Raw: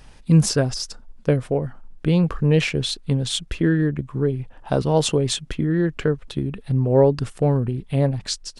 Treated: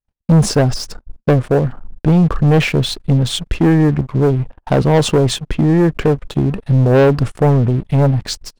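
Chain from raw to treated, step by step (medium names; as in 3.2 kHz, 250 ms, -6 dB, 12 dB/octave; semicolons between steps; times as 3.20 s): gate -39 dBFS, range -39 dB; treble shelf 2.2 kHz -10 dB; waveshaping leveller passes 3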